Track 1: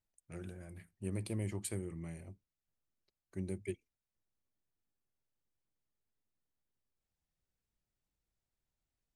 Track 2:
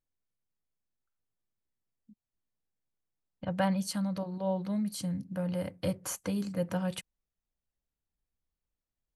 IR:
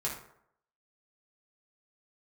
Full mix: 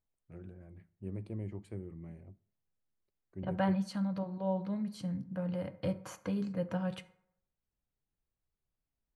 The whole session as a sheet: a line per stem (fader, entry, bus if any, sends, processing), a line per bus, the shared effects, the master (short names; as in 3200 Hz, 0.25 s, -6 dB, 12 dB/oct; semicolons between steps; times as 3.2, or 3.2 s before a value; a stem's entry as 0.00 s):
-6.0 dB, 0.00 s, send -22.5 dB, LPF 3200 Hz 6 dB/oct; tilt shelf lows +4 dB
-4.0 dB, 0.00 s, send -12.5 dB, high shelf 7800 Hz -9.5 dB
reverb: on, RT60 0.70 s, pre-delay 3 ms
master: high shelf 4900 Hz -11 dB